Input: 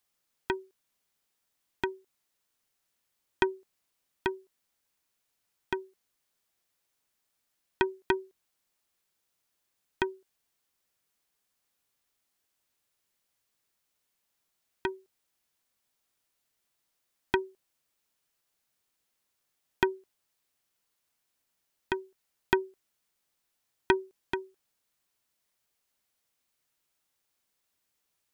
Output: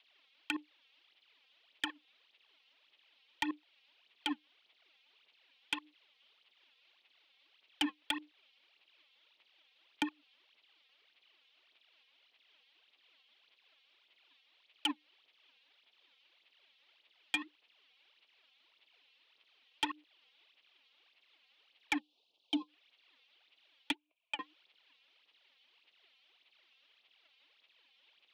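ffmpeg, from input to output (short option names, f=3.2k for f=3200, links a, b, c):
-filter_complex "[0:a]asettb=1/sr,asplit=3[a][b][c];[a]atrim=end=23.914[d];[b]atrim=start=23.91:end=24.39,asetpts=PTS-STARTPTS,afade=t=in:d=0.004:c=qsin,afade=t=out:st=0.476:d=0.004:c=qsin,asplit=3[e][f][g];[e]bandpass=f=730:t=q:w=8,volume=0dB[h];[f]bandpass=f=1.09k:t=q:w=8,volume=-6dB[i];[g]bandpass=f=2.44k:t=q:w=8,volume=-9dB[j];[h][i][j]amix=inputs=3:normalize=0[k];[c]atrim=start=24.386[l];[d][k]acrossfade=d=0.004:c1=hsin:c2=qsin[m];[m][l]acrossfade=d=0.004:c1=qsin:c2=hsin,asplit=2[n][o];[o]acompressor=threshold=-39dB:ratio=6,volume=-0.5dB[p];[n][p]amix=inputs=2:normalize=0,aexciter=amount=11.9:drive=2.8:freq=2.4k,acrossover=split=530[q][r];[q]acrusher=bits=5:mix=0:aa=0.000001[s];[s][r]amix=inputs=2:normalize=0,alimiter=limit=-6.5dB:level=0:latency=1:release=66,aphaser=in_gain=1:out_gain=1:delay=3.6:decay=0.71:speed=1.7:type=sinusoidal,highpass=f=390:t=q:w=0.5412,highpass=f=390:t=q:w=1.307,lowpass=f=3.4k:t=q:w=0.5176,lowpass=f=3.4k:t=q:w=0.7071,lowpass=f=3.4k:t=q:w=1.932,afreqshift=-79,asplit=3[t][u][v];[t]afade=t=out:st=21.98:d=0.02[w];[u]asuperstop=centerf=1700:order=4:qfactor=0.59,afade=t=in:st=21.98:d=0.02,afade=t=out:st=22.67:d=0.02[x];[v]afade=t=in:st=22.67:d=0.02[y];[w][x][y]amix=inputs=3:normalize=0,asoftclip=type=tanh:threshold=-18.5dB,volume=-4.5dB"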